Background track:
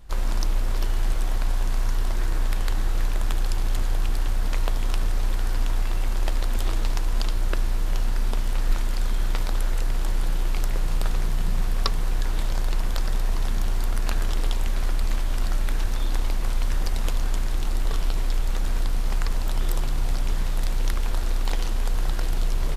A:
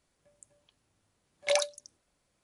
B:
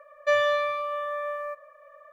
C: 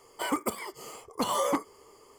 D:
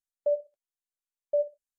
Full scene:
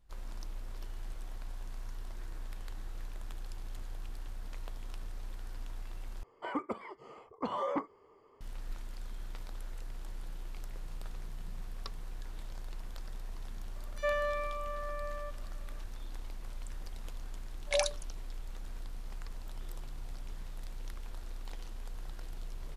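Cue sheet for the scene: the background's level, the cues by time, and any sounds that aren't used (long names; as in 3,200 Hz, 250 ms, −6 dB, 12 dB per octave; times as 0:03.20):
background track −19 dB
0:06.23: overwrite with C −6 dB + low-pass filter 2,000 Hz
0:13.70: mix in B −9.5 dB + multiband delay without the direct sound highs, lows 60 ms, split 3,300 Hz
0:16.24: mix in A −3 dB
not used: D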